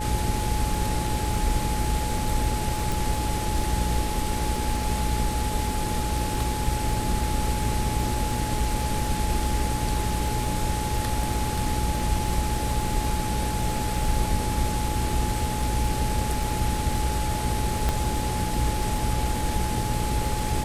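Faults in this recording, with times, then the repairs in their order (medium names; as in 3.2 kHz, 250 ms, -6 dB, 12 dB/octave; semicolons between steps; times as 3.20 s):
buzz 60 Hz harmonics 9 -30 dBFS
crackle 48 per s -32 dBFS
whine 850 Hz -31 dBFS
2.92 s: pop
17.89 s: pop -10 dBFS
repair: de-click; band-stop 850 Hz, Q 30; de-hum 60 Hz, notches 9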